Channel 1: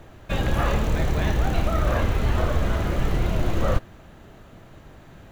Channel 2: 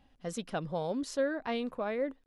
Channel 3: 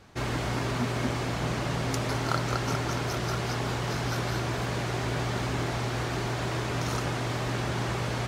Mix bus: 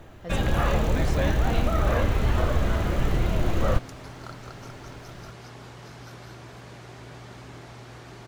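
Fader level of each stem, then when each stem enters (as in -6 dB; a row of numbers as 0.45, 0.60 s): -1.0, -1.0, -13.5 dB; 0.00, 0.00, 1.95 s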